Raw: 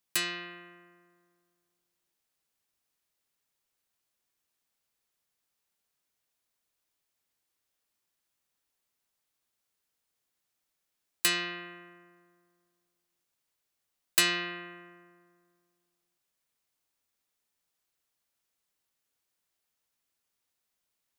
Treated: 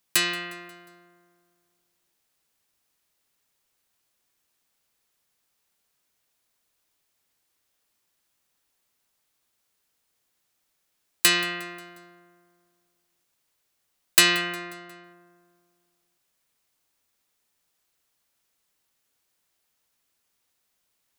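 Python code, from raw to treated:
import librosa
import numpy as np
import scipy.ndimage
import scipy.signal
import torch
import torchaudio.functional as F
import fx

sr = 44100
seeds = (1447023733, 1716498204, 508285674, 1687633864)

y = fx.lowpass(x, sr, hz=3300.0, slope=12, at=(14.41, 15.04))
y = fx.echo_feedback(y, sr, ms=179, feedback_pct=52, wet_db=-21.5)
y = y * 10.0 ** (7.5 / 20.0)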